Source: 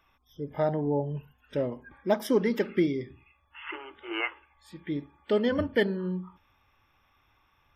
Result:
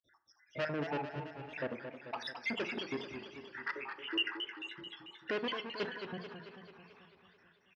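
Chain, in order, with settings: random spectral dropouts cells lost 79%; in parallel at -0.5 dB: limiter -26.5 dBFS, peak gain reduction 10.5 dB; on the sum: soft clip -30 dBFS, distortion -6 dB; speaker cabinet 130–5700 Hz, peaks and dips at 180 Hz -8 dB, 1700 Hz +7 dB, 2700 Hz +10 dB, 5000 Hz +5 dB; echo 0.507 s -20.5 dB; on a send at -12 dB: reverb RT60 0.45 s, pre-delay 27 ms; on the sum: warbling echo 0.22 s, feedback 61%, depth 125 cents, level -8 dB; gain -2.5 dB

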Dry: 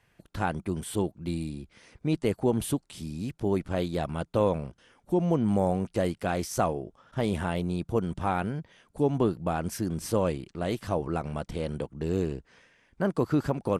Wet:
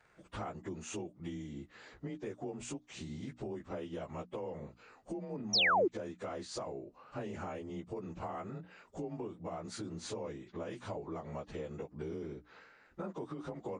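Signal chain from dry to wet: inharmonic rescaling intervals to 92%; limiter -22 dBFS, peak gain reduction 9 dB; tone controls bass -8 dB, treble -6 dB; compressor 6:1, threshold -44 dBFS, peak gain reduction 15 dB; bell 2600 Hz -2.5 dB 0.77 oct; notches 60/120/180/240/300 Hz; painted sound fall, 5.53–5.88, 310–6100 Hz -33 dBFS; gain +5 dB

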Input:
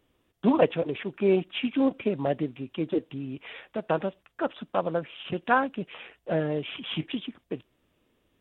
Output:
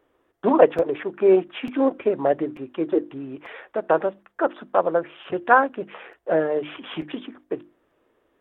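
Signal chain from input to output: band shelf 760 Hz +12 dB 3 oct; notches 50/100/150/200/250/300/350 Hz; crackling interface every 0.89 s, samples 256, repeat, from 0.78; gain -4.5 dB

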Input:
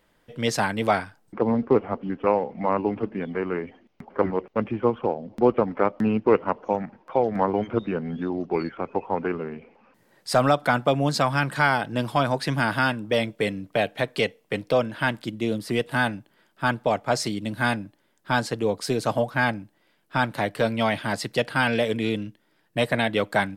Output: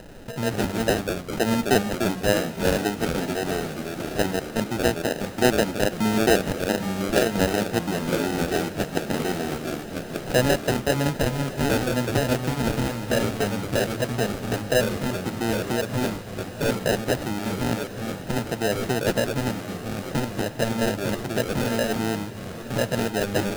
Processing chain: elliptic band-stop 1100–6900 Hz; upward compressor, threshold -25 dBFS; sample-and-hold 39×; echoes that change speed 88 ms, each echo -2 st, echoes 3, each echo -6 dB; on a send: diffused feedback echo 1.038 s, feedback 67%, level -15 dB

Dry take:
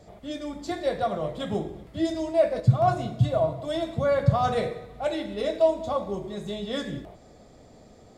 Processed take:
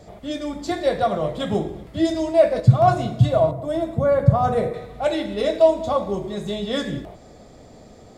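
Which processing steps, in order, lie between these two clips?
3.51–4.74 bell 3900 Hz -13 dB 2.2 oct; gain +6 dB

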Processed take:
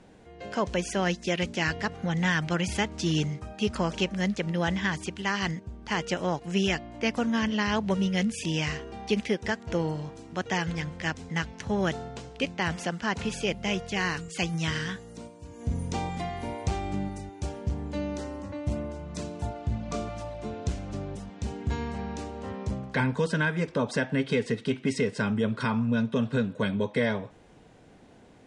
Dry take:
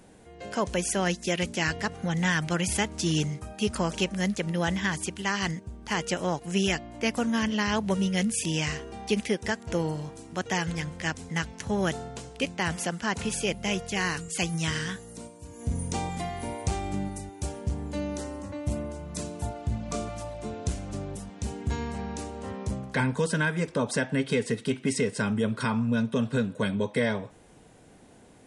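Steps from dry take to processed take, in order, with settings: LPF 5300 Hz 12 dB/oct

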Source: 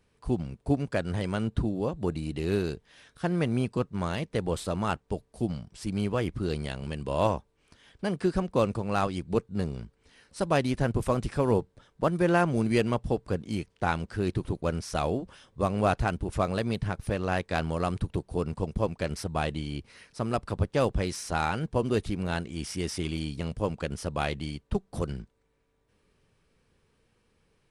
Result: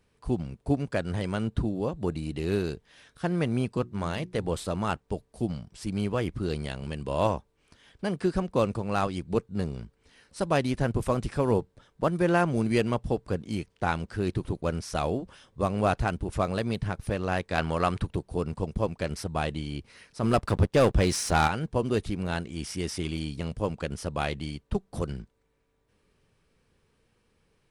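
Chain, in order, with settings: 3.81–4.45 notches 60/120/180/240/300/360 Hz; 17.58–18.07 bell 1700 Hz +7 dB 2.7 oct; 20.23–21.48 sample leveller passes 2

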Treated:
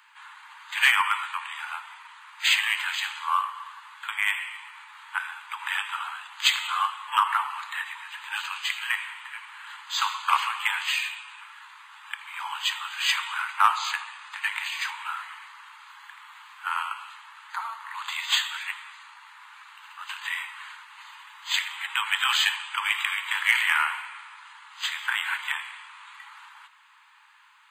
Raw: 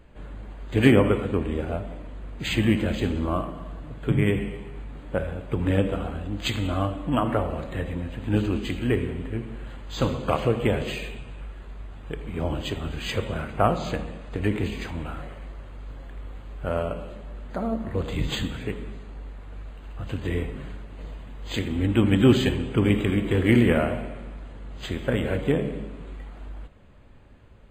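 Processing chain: steep high-pass 880 Hz 96 dB/oct; in parallel at -7 dB: overloaded stage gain 23.5 dB; on the sum: gain +5.5 dB

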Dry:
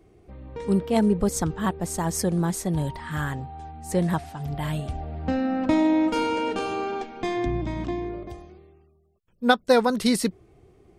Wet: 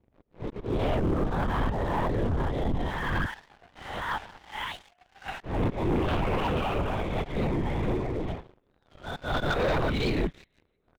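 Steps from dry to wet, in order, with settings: spectral swells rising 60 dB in 1.06 s; 3.25–5.41 Bessel high-pass 1200 Hz, order 8; auto swell 0.253 s; gate -39 dBFS, range -7 dB; thin delay 0.166 s, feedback 39%, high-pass 1700 Hz, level -17 dB; flange 0.61 Hz, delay 0.1 ms, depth 8.2 ms, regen +32%; compressor 2.5:1, threshold -26 dBFS, peak gain reduction 7 dB; outdoor echo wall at 270 m, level -29 dB; LPC vocoder at 8 kHz whisper; sample leveller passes 3; record warp 45 rpm, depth 160 cents; gain -5.5 dB

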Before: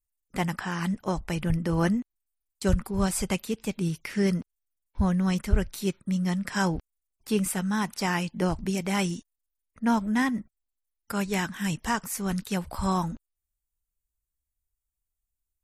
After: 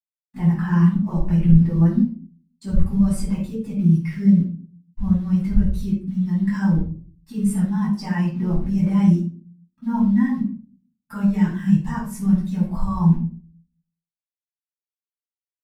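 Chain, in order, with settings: in parallel at +1 dB: negative-ratio compressor -30 dBFS, ratio -0.5; on the sum: bit-crush 6-bit; reverb RT60 0.60 s, pre-delay 5 ms, DRR -7.5 dB; spectral expander 1.5:1; gain -8.5 dB

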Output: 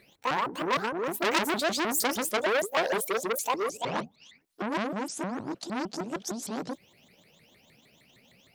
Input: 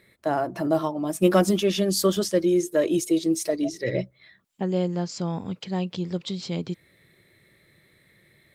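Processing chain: repeated pitch sweeps +11 st, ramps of 0.154 s; core saturation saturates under 3800 Hz

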